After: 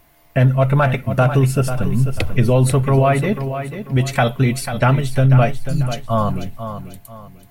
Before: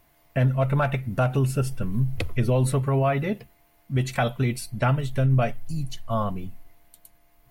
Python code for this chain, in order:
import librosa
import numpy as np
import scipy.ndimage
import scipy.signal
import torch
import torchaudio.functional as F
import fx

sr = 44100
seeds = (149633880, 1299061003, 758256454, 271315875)

y = fx.echo_feedback(x, sr, ms=492, feedback_pct=33, wet_db=-10.0)
y = y * librosa.db_to_amplitude(7.5)